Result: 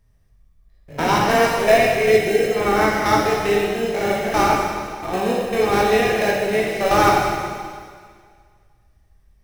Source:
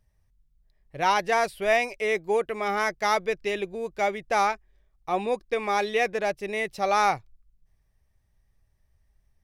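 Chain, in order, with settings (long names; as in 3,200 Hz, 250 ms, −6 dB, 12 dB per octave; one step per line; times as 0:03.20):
spectrum averaged block by block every 100 ms
in parallel at −6 dB: decimation without filtering 38×
0:01.79–0:02.51: on the sum: Butterworth band-reject 1,000 Hz, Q 1.3
dense smooth reverb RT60 1.9 s, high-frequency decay 1×, DRR −3 dB
level +4.5 dB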